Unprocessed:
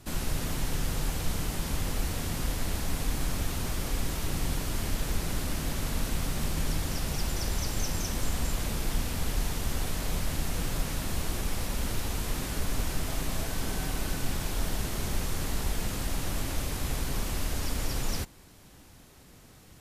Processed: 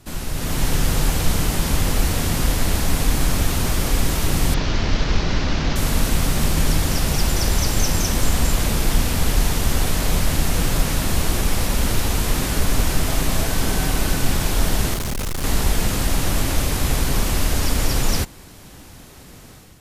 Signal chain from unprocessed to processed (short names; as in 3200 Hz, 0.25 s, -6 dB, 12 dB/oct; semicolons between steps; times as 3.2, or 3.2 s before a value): 4.54–5.76 CVSD 32 kbps; AGC gain up to 8.5 dB; 14.94–15.44 overloaded stage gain 24.5 dB; gain +3 dB